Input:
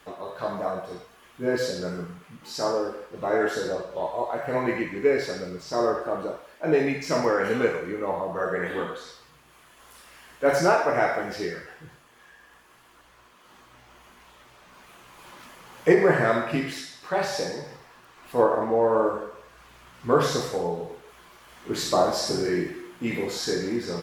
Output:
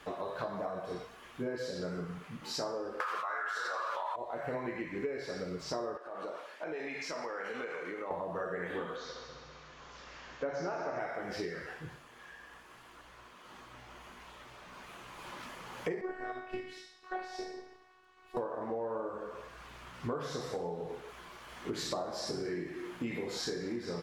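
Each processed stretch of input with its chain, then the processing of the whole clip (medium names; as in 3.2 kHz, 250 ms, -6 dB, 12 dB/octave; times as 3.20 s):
3.00–4.16 s: resonant high-pass 1.2 kHz, resonance Q 4.3 + level flattener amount 100%
5.97–8.11 s: frequency weighting A + compression 5:1, threshold -37 dBFS
8.96–10.99 s: steep low-pass 6.8 kHz 72 dB/octave + peaking EQ 2.7 kHz -2.5 dB 1.8 oct + multi-head delay 66 ms, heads second and third, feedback 60%, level -9.5 dB
16.01–18.37 s: treble shelf 7.4 kHz -9.5 dB + robot voice 370 Hz + upward expansion, over -36 dBFS
whole clip: treble shelf 9.3 kHz -10.5 dB; compression 10:1, threshold -35 dBFS; trim +1 dB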